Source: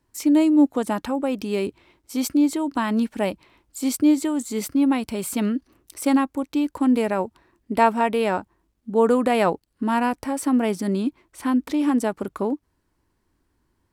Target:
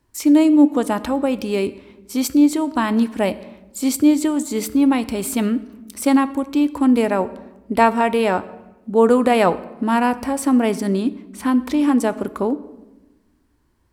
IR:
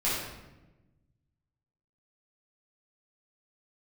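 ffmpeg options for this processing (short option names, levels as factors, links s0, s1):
-filter_complex "[0:a]equalizer=f=62:w=7.8:g=9.5,asplit=2[s0][s1];[1:a]atrim=start_sample=2205[s2];[s1][s2]afir=irnorm=-1:irlink=0,volume=0.0668[s3];[s0][s3]amix=inputs=2:normalize=0,volume=1.5"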